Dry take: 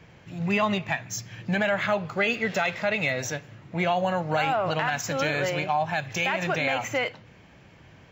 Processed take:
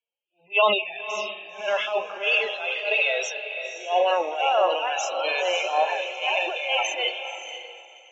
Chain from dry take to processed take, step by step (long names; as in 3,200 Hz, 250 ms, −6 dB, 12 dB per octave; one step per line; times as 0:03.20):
high-pass filter 390 Hz 24 dB per octave
noise gate −53 dBFS, range −10 dB
parametric band 1,000 Hz +5.5 dB 2.5 octaves
harmonic and percussive parts rebalanced percussive −12 dB
high shelf with overshoot 2,300 Hz +6.5 dB, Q 3
transient designer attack −12 dB, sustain +8 dB
spectral peaks only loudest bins 32
feedback delay with all-pass diffusion 532 ms, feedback 42%, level −5.5 dB
multiband upward and downward expander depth 70%